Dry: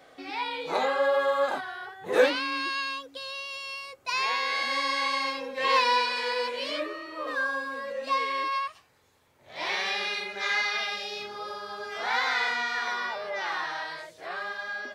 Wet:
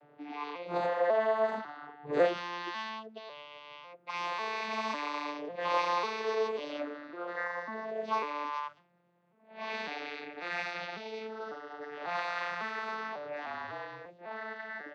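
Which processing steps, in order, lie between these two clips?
arpeggiated vocoder minor triad, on D3, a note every 0.548 s; 13.46–14.06 frequency shift -40 Hz; low-pass opened by the level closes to 2200 Hz, open at -23.5 dBFS; gain -5 dB

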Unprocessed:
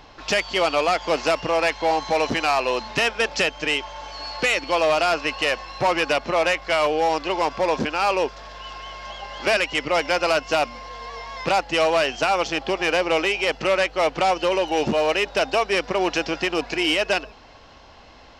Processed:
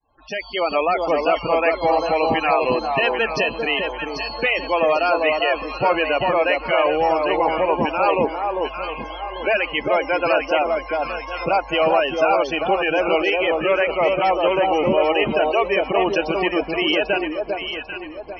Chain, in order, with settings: opening faded in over 0.77 s; loudest bins only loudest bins 32; echo with dull and thin repeats by turns 0.397 s, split 1100 Hz, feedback 60%, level -2.5 dB; gain +1.5 dB

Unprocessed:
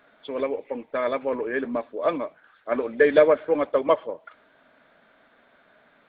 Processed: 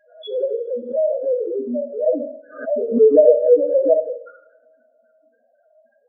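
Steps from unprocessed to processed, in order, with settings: spectral trails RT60 0.39 s; thirty-one-band EQ 315 Hz +3 dB, 500 Hz +4 dB, 800 Hz +4 dB; loudest bins only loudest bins 2; two-slope reverb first 0.47 s, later 1.8 s, from -25 dB, DRR 4.5 dB; backwards sustainer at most 120 dB/s; gain +4 dB

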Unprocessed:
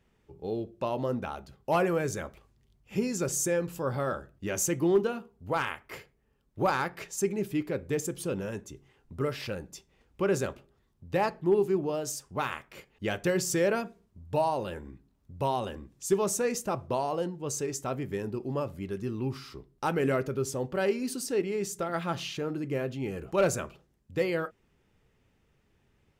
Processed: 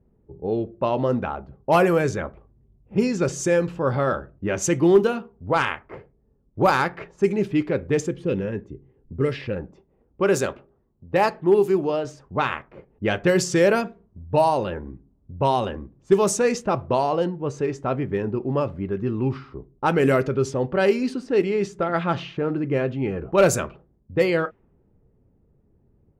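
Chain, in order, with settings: low-pass opened by the level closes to 480 Hz, open at -22.5 dBFS; 8.09–9.56 spectral gain 540–1600 Hz -7 dB; 9.71–12.05 low shelf 170 Hz -8 dB; gain +8.5 dB

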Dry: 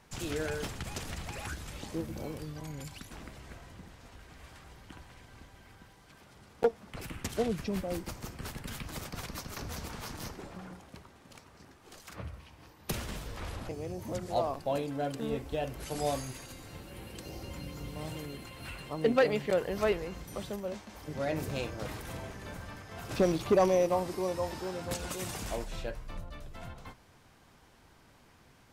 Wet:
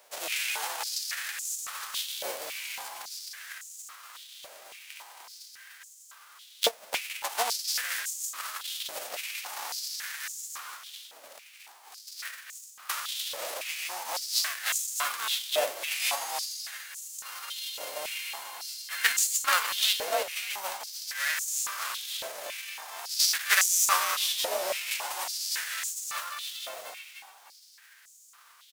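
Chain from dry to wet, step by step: spectral whitening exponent 0.3; frequency-shifting echo 0.299 s, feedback 37%, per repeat +50 Hz, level -6 dB; stepped high-pass 3.6 Hz 590–6900 Hz

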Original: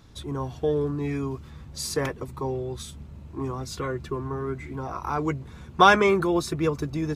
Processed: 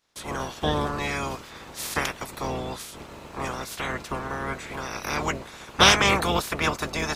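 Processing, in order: spectral limiter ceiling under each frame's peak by 29 dB; gate with hold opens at -35 dBFS; Doppler distortion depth 0.12 ms

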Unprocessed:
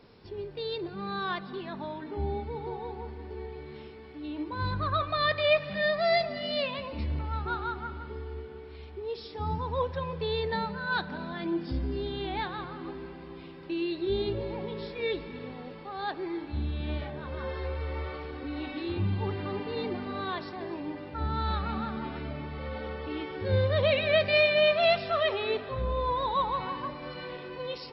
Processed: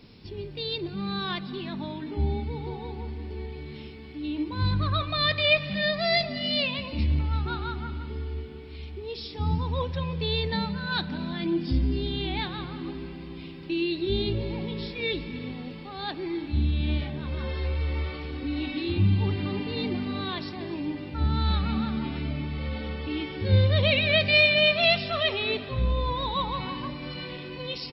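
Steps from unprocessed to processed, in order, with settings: band shelf 830 Hz -9.5 dB 2.5 oct; echo 0.36 s -23 dB; gain +7.5 dB

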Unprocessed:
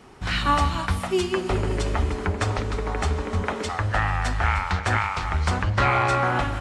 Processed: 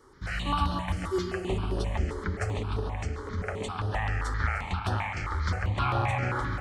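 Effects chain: 2.79–3.38 compressor, threshold -24 dBFS, peak gain reduction 5.5 dB; analogue delay 0.138 s, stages 4096, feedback 66%, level -8 dB; on a send at -16 dB: reverb RT60 3.5 s, pre-delay 72 ms; on the sum: step phaser 7.6 Hz 700–7300 Hz; gain -5.5 dB

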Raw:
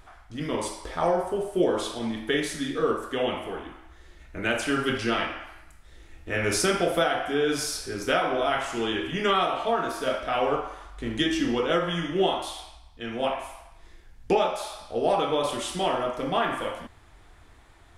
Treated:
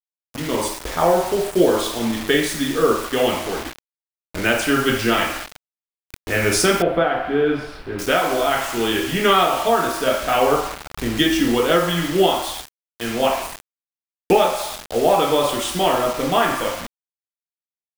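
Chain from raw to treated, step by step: AGC gain up to 8.5 dB; bit-crush 5-bit; 6.82–7.99 air absorption 480 m

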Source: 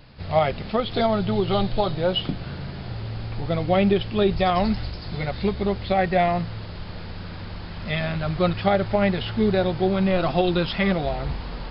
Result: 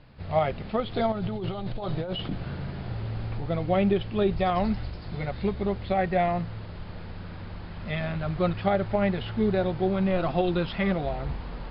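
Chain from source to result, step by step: high shelf 4100 Hz -3 dB; 1.12–3.38 negative-ratio compressor -26 dBFS, ratio -1; air absorption 170 m; gain -3.5 dB

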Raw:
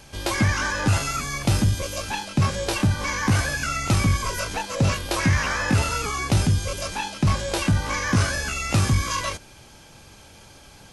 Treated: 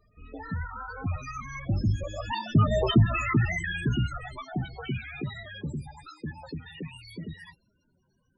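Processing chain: speed glide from 74% -> 187%; Doppler pass-by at 2.85, 6 m/s, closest 1.6 m; in parallel at +1 dB: limiter -24 dBFS, peak gain reduction 11 dB; on the sum: loudest bins only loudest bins 16

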